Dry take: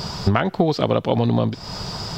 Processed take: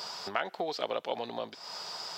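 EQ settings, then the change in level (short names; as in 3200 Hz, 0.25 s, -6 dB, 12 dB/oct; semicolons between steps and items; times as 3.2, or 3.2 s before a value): HPF 640 Hz 12 dB/oct; dynamic EQ 1100 Hz, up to -4 dB, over -39 dBFS, Q 2.9; -8.0 dB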